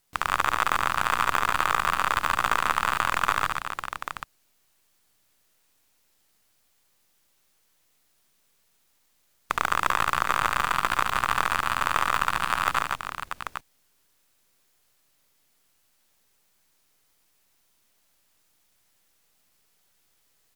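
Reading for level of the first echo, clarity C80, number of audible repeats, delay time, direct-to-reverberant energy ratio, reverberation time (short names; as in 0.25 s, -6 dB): -6.0 dB, none, 4, 72 ms, none, none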